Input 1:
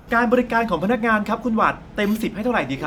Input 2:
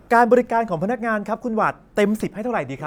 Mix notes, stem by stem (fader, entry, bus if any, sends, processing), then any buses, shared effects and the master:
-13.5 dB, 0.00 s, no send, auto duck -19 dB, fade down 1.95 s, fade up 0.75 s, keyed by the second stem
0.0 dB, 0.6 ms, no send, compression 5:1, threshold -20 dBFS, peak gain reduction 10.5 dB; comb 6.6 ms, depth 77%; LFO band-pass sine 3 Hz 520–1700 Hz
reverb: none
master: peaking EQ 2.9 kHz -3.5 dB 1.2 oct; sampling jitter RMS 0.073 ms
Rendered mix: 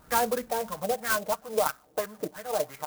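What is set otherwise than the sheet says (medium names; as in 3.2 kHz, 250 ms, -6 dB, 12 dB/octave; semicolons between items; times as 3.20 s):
stem 2: polarity flipped; master: missing peaking EQ 2.9 kHz -3.5 dB 1.2 oct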